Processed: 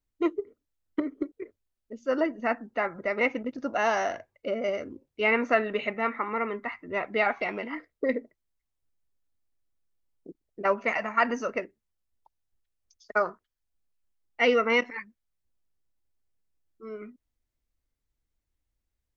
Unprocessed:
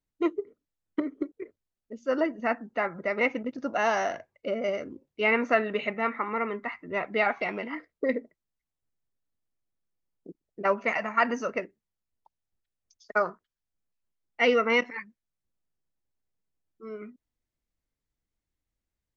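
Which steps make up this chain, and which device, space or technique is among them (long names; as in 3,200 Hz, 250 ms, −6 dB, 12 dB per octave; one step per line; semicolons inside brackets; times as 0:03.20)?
low shelf boost with a cut just above (low-shelf EQ 100 Hz +7 dB; parametric band 170 Hz −5.5 dB 0.52 octaves)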